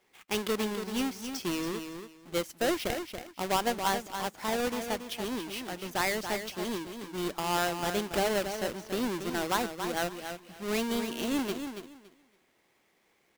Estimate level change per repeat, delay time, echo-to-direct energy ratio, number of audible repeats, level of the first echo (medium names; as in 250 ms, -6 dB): -14.0 dB, 281 ms, -8.0 dB, 2, -8.0 dB